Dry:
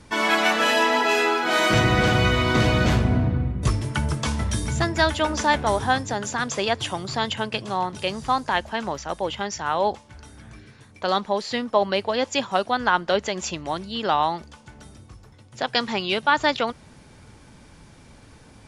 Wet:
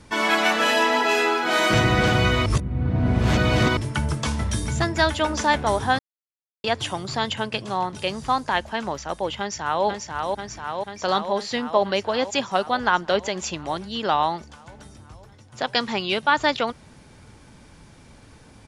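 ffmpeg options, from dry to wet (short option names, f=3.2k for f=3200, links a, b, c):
-filter_complex "[0:a]asplit=2[a][b];[b]afade=t=in:st=9.39:d=0.01,afade=t=out:st=9.85:d=0.01,aecho=0:1:490|980|1470|1960|2450|2940|3430|3920|4410|4900|5390|5880:0.668344|0.501258|0.375943|0.281958|0.211468|0.158601|0.118951|0.0892131|0.0669099|0.0501824|0.0376368|0.0282276[c];[a][c]amix=inputs=2:normalize=0,asplit=5[d][e][f][g][h];[d]atrim=end=2.462[i];[e]atrim=start=2.458:end=3.772,asetpts=PTS-STARTPTS,areverse[j];[f]atrim=start=3.768:end=5.99,asetpts=PTS-STARTPTS,afade=t=out:st=2.218:d=0.004:c=hsin[k];[g]atrim=start=5.99:end=6.64,asetpts=PTS-STARTPTS,volume=0[l];[h]atrim=start=6.64,asetpts=PTS-STARTPTS,afade=t=in:d=0.004:c=hsin[m];[i][j]acrossfade=d=0.004:c1=hsin:c2=hsin[n];[k][l][m]concat=n=3:v=0:a=1[o];[n][o]acrossfade=d=0.004:c1=hsin:c2=hsin"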